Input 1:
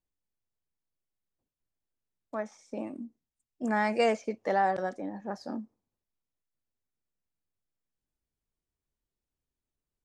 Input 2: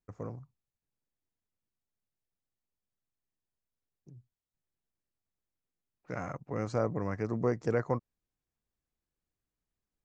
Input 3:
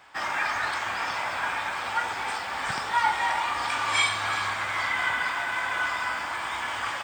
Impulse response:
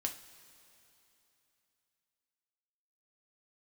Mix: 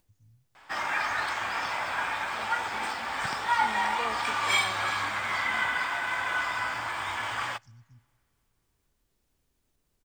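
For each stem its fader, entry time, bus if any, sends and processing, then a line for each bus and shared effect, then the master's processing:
-13.5 dB, 0.00 s, no send, upward compressor, threshold -38 dBFS
-13.5 dB, 0.00 s, send -9.5 dB, Chebyshev band-stop 130–4400 Hz, order 3; comb 3.3 ms
-2.0 dB, 0.55 s, send -22.5 dB, median filter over 3 samples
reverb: on, pre-delay 3 ms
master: dry

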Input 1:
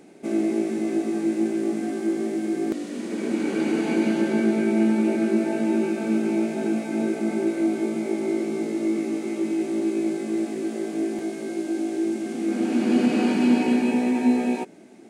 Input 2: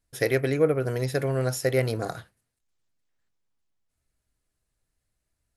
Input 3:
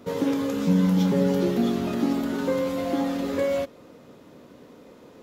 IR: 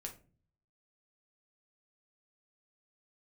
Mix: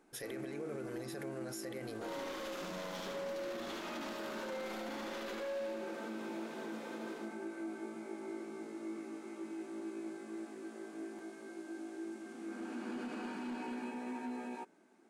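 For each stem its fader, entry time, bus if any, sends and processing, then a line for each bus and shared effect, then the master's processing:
-17.5 dB, 0.00 s, no bus, no send, no echo send, band shelf 1200 Hz +9 dB 1.1 oct; hard clip -14 dBFS, distortion -24 dB
-4.5 dB, 0.00 s, bus A, no send, no echo send, dry
-14.5 dB, 1.95 s, bus A, no send, echo send -3.5 dB, overdrive pedal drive 25 dB, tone 5700 Hz, clips at -10.5 dBFS; de-hum 69.27 Hz, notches 6
bus A: 0.0 dB, limiter -32.5 dBFS, peak gain reduction 17.5 dB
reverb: off
echo: feedback echo 74 ms, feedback 58%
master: bell 83 Hz -15 dB 1.5 oct; limiter -34 dBFS, peak gain reduction 11.5 dB

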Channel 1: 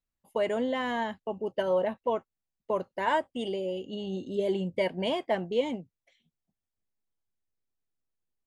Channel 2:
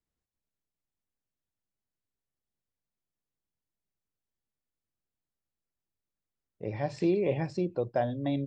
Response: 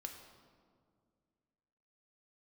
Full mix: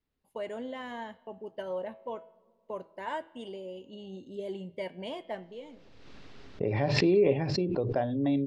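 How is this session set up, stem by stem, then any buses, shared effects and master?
-13.0 dB, 0.00 s, send -13 dB, de-hum 163.9 Hz, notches 27; auto duck -15 dB, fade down 0.45 s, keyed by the second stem
+1.0 dB, 0.00 s, no send, LPF 4500 Hz 24 dB/oct; small resonant body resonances 270/410/2700 Hz, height 8 dB, ringing for 0.1 s; backwards sustainer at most 37 dB/s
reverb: on, RT60 2.1 s, pre-delay 3 ms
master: vocal rider within 3 dB 2 s

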